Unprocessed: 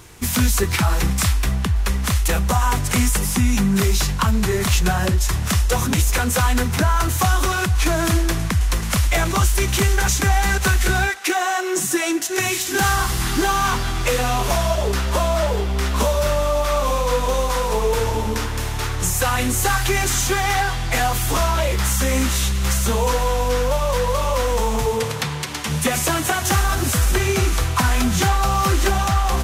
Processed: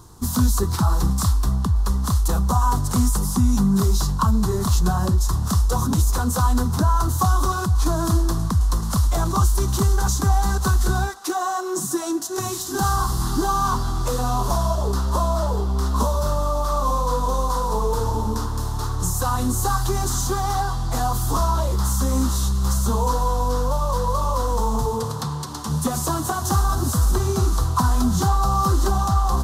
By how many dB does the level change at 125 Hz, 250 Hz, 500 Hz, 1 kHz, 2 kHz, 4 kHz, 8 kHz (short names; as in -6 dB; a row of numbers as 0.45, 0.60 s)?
0.0, -0.5, -5.0, -1.0, -12.5, -8.0, -5.0 dB